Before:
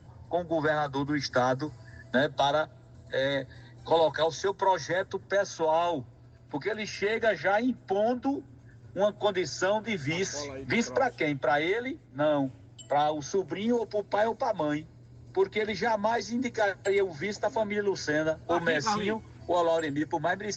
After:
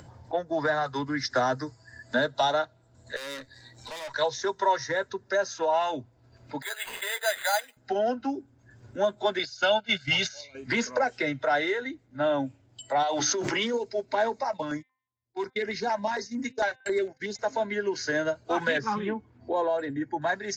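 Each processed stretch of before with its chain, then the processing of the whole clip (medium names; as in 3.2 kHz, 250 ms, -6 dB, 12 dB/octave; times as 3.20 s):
3.16–4.14 s: treble shelf 4.1 kHz +6.5 dB + valve stage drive 35 dB, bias 0.6
6.62–7.77 s: high-pass 640 Hz 24 dB/octave + careless resampling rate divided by 8×, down none, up hold
9.39–10.55 s: gate -33 dBFS, range -12 dB + high-order bell 3.4 kHz +9 dB 1.1 oct + comb 1.4 ms, depth 58%
13.03–13.74 s: bass shelf 380 Hz -12 dB + hum notches 50/100/150/200/250/300/350 Hz + level flattener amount 100%
14.44–17.39 s: gate -39 dBFS, range -42 dB + de-hum 259 Hz, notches 15 + step-sequenced notch 11 Hz 350–3900 Hz
18.78–20.22 s: low-pass 1.2 kHz 6 dB/octave + peaking EQ 220 Hz +4 dB 0.32 oct
whole clip: bass shelf 360 Hz -5.5 dB; spectral noise reduction 8 dB; upward compressor, threshold -41 dBFS; trim +2 dB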